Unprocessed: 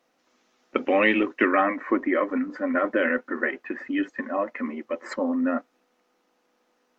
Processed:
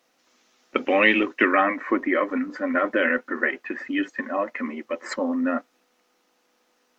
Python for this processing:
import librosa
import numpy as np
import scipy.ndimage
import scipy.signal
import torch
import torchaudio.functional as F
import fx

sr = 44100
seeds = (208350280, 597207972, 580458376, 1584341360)

y = fx.high_shelf(x, sr, hz=2100.0, db=8.0)